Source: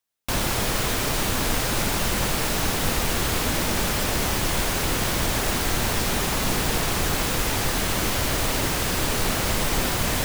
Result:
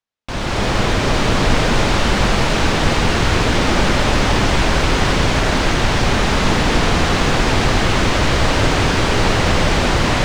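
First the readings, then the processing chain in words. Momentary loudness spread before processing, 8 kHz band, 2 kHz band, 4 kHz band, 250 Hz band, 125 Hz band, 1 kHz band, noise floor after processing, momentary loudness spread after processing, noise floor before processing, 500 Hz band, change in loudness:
0 LU, -1.0 dB, +8.5 dB, +6.5 dB, +9.5 dB, +10.0 dB, +9.0 dB, -20 dBFS, 1 LU, -25 dBFS, +9.5 dB, +7.0 dB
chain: level rider gain up to 10 dB; distance through air 120 m; on a send: two-band feedback delay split 1 kHz, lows 180 ms, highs 744 ms, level -4 dB

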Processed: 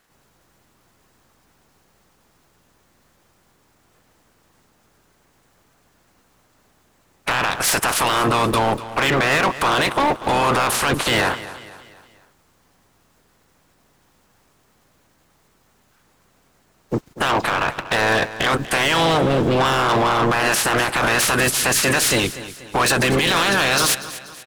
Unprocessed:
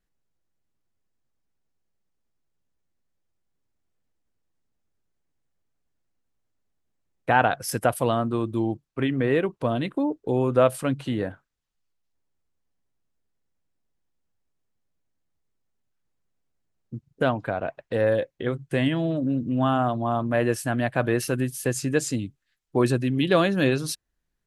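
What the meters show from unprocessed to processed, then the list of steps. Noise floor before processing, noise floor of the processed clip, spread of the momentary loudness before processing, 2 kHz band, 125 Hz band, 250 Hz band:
-78 dBFS, -61 dBFS, 9 LU, +12.0 dB, +1.5 dB, +0.5 dB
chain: spectral peaks clipped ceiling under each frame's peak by 27 dB; peaking EQ 1.1 kHz +5.5 dB 1.3 oct; in parallel at -2.5 dB: compressor with a negative ratio -28 dBFS; on the sum: peak limiter -9.5 dBFS, peak gain reduction 10.5 dB; waveshaping leveller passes 1; saturation -19 dBFS, distortion -11 dB; on a send: feedback delay 241 ms, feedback 45%, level -15.5 dB; on the sum: trim +5.5 dB

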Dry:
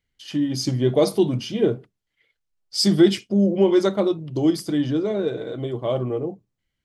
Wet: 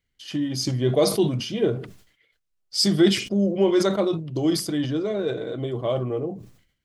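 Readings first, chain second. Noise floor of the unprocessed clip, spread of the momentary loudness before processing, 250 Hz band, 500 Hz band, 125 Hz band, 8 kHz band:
-79 dBFS, 11 LU, -2.5 dB, -2.0 dB, -1.0 dB, +2.5 dB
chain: band-stop 870 Hz, Q 12; dynamic bell 250 Hz, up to -4 dB, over -27 dBFS, Q 0.76; decay stretcher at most 100 dB/s

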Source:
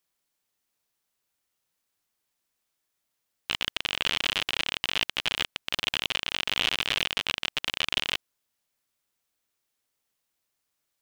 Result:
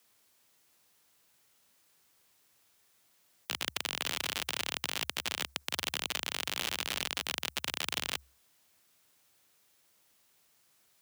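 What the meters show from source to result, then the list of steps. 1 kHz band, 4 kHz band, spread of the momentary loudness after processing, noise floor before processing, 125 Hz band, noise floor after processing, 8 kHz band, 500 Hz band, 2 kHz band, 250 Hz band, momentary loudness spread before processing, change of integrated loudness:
-4.5 dB, -8.0 dB, 2 LU, -81 dBFS, -4.5 dB, -69 dBFS, +2.5 dB, -4.0 dB, -7.5 dB, -4.0 dB, 4 LU, -6.5 dB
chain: frequency shift +66 Hz; spectrum-flattening compressor 2:1; trim -5 dB

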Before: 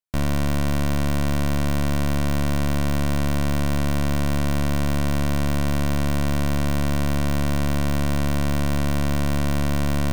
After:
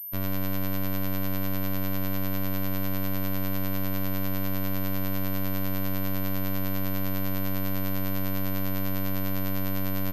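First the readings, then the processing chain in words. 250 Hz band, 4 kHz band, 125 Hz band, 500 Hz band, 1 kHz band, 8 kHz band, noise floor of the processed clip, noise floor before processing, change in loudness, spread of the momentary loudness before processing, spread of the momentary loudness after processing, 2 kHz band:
-6.5 dB, -7.5 dB, -9.5 dB, -7.0 dB, -8.0 dB, -12.0 dB, -26 dBFS, -20 dBFS, -6.5 dB, 0 LU, 0 LU, -7.0 dB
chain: robot voice 95.7 Hz; delay 132 ms -10.5 dB; class-D stage that switches slowly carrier 13 kHz; trim -5.5 dB

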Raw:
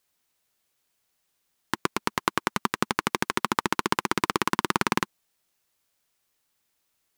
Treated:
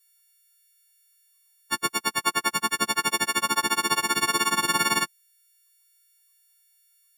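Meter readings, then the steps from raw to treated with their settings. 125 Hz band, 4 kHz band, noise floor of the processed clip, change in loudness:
-6.5 dB, +7.0 dB, -64 dBFS, +3.5 dB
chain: partials quantised in pitch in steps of 4 st; spectral gate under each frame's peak -25 dB strong; trim -3 dB

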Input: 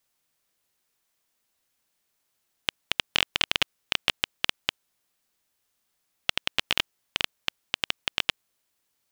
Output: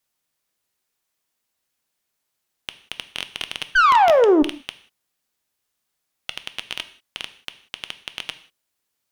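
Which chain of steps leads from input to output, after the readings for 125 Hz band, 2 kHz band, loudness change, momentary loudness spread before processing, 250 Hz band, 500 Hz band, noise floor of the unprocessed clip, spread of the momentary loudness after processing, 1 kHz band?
no reading, +4.0 dB, +9.5 dB, 9 LU, +20.0 dB, +22.0 dB, -76 dBFS, 23 LU, +18.5 dB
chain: painted sound fall, 3.75–4.43 s, 280–1600 Hz -10 dBFS; valve stage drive 11 dB, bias 0.45; gated-style reverb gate 210 ms falling, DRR 10.5 dB

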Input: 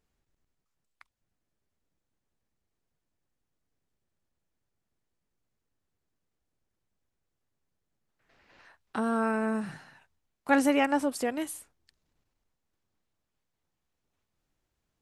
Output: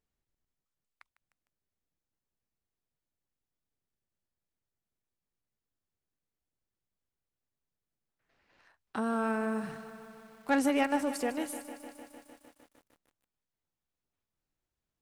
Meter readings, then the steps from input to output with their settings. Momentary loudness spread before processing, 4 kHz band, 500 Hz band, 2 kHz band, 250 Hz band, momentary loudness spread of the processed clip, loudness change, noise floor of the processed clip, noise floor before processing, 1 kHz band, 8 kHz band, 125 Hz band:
16 LU, -2.5 dB, -3.0 dB, -3.5 dB, -3.0 dB, 20 LU, -3.5 dB, under -85 dBFS, -83 dBFS, -3.0 dB, -2.5 dB, -3.0 dB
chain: waveshaping leveller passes 1; bit-crushed delay 152 ms, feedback 80%, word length 8-bit, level -14 dB; trim -6.5 dB

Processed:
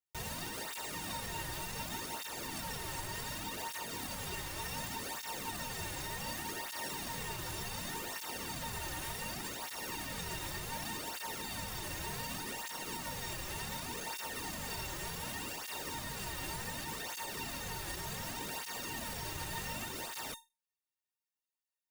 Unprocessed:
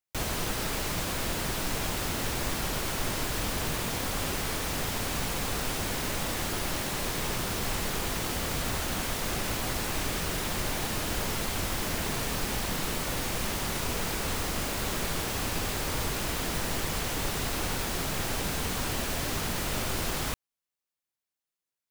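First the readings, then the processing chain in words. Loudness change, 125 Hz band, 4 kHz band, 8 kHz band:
-9.0 dB, -12.0 dB, -8.5 dB, -8.5 dB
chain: peak limiter -24 dBFS, peak gain reduction 6.5 dB; feedback comb 910 Hz, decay 0.25 s, mix 90%; cancelling through-zero flanger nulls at 0.67 Hz, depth 4.7 ms; trim +13 dB

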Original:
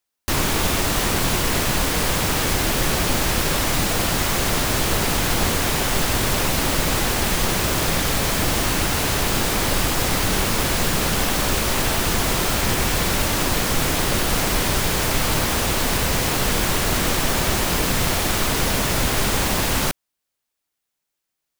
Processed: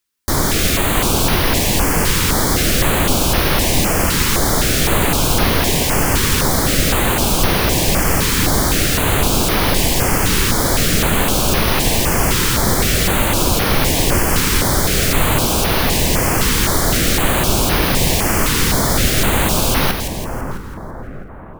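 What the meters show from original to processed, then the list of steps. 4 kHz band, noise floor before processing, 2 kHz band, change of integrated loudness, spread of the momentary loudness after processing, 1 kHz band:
+4.0 dB, -81 dBFS, +4.0 dB, +5.0 dB, 1 LU, +4.5 dB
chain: two-band feedback delay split 1.5 kHz, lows 657 ms, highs 166 ms, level -7 dB; step-sequenced notch 3.9 Hz 670–7600 Hz; trim +5 dB

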